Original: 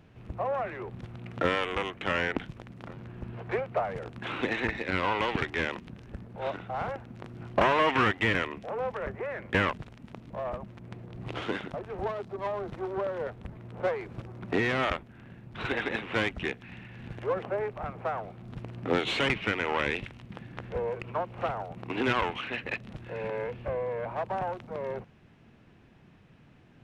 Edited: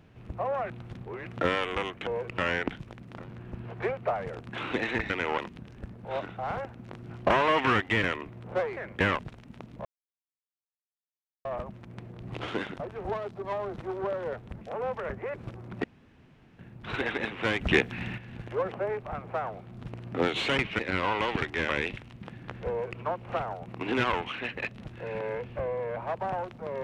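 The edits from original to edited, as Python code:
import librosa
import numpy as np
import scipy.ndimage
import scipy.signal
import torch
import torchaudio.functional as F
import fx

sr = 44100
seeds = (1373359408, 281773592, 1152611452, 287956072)

y = fx.edit(x, sr, fx.reverse_span(start_s=0.7, length_s=0.56),
    fx.swap(start_s=4.79, length_s=0.9, other_s=19.5, other_length_s=0.28),
    fx.swap(start_s=8.58, length_s=0.73, other_s=13.55, other_length_s=0.5),
    fx.insert_silence(at_s=10.39, length_s=1.6),
    fx.room_tone_fill(start_s=14.55, length_s=0.75),
    fx.clip_gain(start_s=16.32, length_s=0.57, db=10.0),
    fx.duplicate(start_s=20.79, length_s=0.31, to_s=2.07), tone=tone)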